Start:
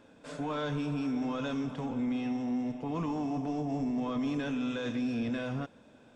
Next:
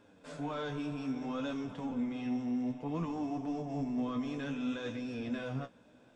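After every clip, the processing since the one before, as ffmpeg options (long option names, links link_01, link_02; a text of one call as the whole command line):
ffmpeg -i in.wav -af "flanger=delay=9.9:depth=6.8:regen=34:speed=0.6:shape=sinusoidal" out.wav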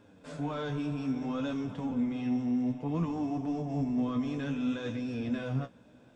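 ffmpeg -i in.wav -af "equalizer=frequency=100:width_type=o:width=2.7:gain=6.5,volume=1dB" out.wav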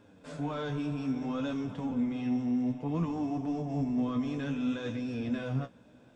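ffmpeg -i in.wav -af anull out.wav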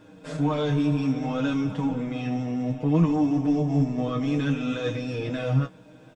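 ffmpeg -i in.wav -af "aecho=1:1:6.4:0.87,volume=6dB" out.wav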